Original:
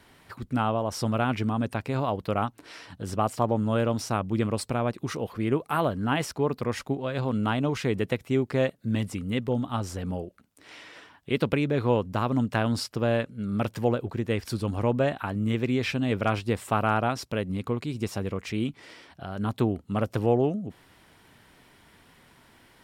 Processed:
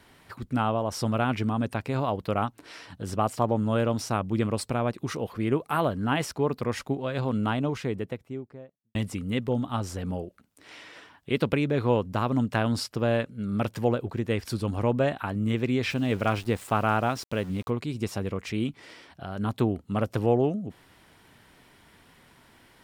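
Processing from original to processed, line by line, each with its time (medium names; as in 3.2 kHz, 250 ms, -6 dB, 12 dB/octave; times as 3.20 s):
7.26–8.95 s: studio fade out
15.90–17.70 s: small samples zeroed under -43 dBFS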